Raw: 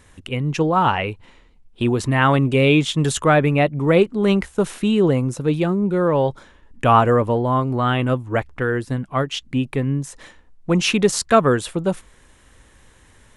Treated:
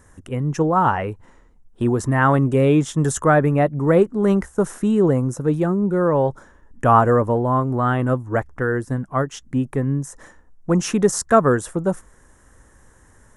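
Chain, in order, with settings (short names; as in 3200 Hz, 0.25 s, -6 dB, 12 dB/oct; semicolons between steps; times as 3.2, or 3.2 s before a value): band shelf 3200 Hz -13.5 dB 1.3 oct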